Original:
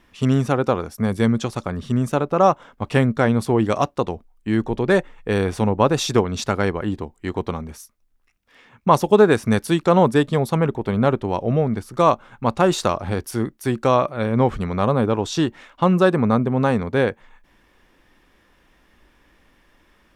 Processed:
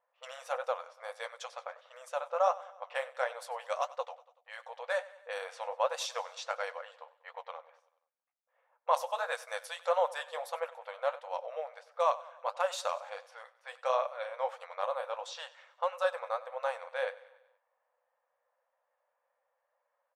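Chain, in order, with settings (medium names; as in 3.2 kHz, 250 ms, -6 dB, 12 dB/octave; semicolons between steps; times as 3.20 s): level-controlled noise filter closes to 770 Hz, open at -16 dBFS; flange 1.5 Hz, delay 5.2 ms, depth 9.5 ms, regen -47%; brick-wall FIR high-pass 480 Hz; feedback delay 95 ms, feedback 55%, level -19 dB; trim -8 dB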